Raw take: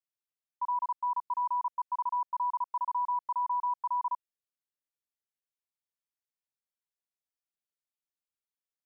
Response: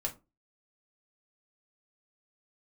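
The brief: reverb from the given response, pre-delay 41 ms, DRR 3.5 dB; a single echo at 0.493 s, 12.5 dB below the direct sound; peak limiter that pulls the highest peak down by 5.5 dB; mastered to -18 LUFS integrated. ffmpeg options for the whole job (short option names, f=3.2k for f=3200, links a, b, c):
-filter_complex "[0:a]alimiter=level_in=7.5dB:limit=-24dB:level=0:latency=1,volume=-7.5dB,aecho=1:1:493:0.237,asplit=2[a][b];[1:a]atrim=start_sample=2205,adelay=41[c];[b][c]afir=irnorm=-1:irlink=0,volume=-5.5dB[d];[a][d]amix=inputs=2:normalize=0,volume=20.5dB"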